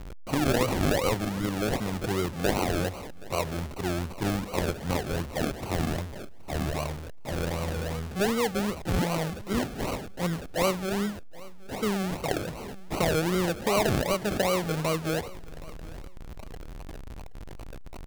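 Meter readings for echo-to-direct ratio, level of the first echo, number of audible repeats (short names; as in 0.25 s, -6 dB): -20.5 dB, -21.0 dB, 2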